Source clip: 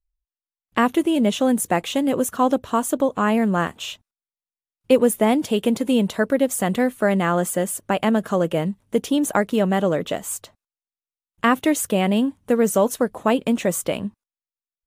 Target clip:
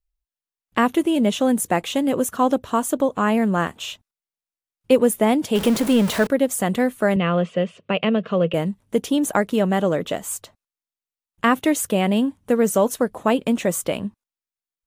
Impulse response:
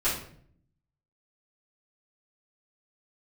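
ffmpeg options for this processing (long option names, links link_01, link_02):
-filter_complex "[0:a]asettb=1/sr,asplit=3[link_01][link_02][link_03];[link_01]atrim=end=5.554[link_04];[link_02]atrim=start=5.55:end=6.27,asetpts=PTS-STARTPTS,afade=type=in:duration=0.004:curve=qsin,afade=type=out:start_time=0.716:duration=0.004:curve=qsin,aeval=exprs='val(0)+0.5*0.0708*sgn(val(0))':channel_layout=same[link_05];[link_03]atrim=start=6.266[link_06];[link_04][link_05]acrossfade=duration=0.004:curve1=hsin:curve2=qsin[link_07];[link_07][link_06]acrossfade=duration=0.004:curve1=qsin:curve2=hsin,asettb=1/sr,asplit=3[link_08][link_09][link_10];[link_08]atrim=end=7.164[link_11];[link_09]atrim=start=7.16:end=8.54,asetpts=PTS-STARTPTS,afade=type=in:duration=0.004:curve=qsin,afade=type=out:start_time=1.376:duration=0.004:curve=qsin,highpass=140,equalizer=frequency=170:width_type=q:width=4:gain=5,equalizer=frequency=300:width_type=q:width=4:gain=-9,equalizer=frequency=480:width_type=q:width=4:gain=5,equalizer=frequency=840:width_type=q:width=4:gain=-10,equalizer=frequency=1600:width_type=q:width=4:gain=-6,equalizer=frequency=2700:width_type=q:width=4:gain=9,lowpass=frequency=3900:width=0.5412,lowpass=frequency=3900:width=1.3066[link_12];[link_10]atrim=start=8.536[link_13];[link_11][link_12]acrossfade=duration=0.004:curve1=hsin:curve2=qsin[link_14];[link_14][link_13]acrossfade=duration=0.004:curve1=qsin:curve2=hsin"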